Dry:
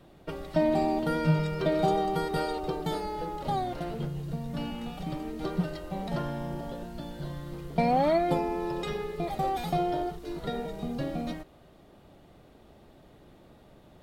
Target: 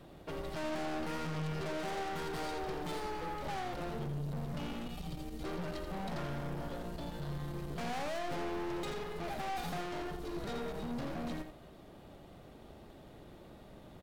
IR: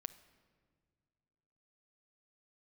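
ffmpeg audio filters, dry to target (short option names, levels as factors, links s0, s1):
-filter_complex "[0:a]asettb=1/sr,asplit=3[s0][s1][s2];[s0]atrim=end=4.864[s3];[s1]atrim=start=4.86:end=5.44,asetpts=PTS-STARTPTS,afade=t=in:d=0.004:c=qsin,afade=t=out:st=0.576:d=0.004:c=qsin,acrossover=split=130|3000[s4][s5][s6];[s5]acompressor=threshold=0.00447:ratio=4[s7];[s4][s7][s6]amix=inputs=3:normalize=0[s8];[s2]atrim=start=5.436[s9];[s3][s8]acrossfade=d=0.004:c1=hsin:c2=qsin[s10];[s10][s9]acrossfade=d=0.004:c1=qsin:c2=hsin,aeval=exprs='(tanh(100*val(0)+0.4)-tanh(0.4))/100':c=same,aecho=1:1:84:0.398,volume=1.26"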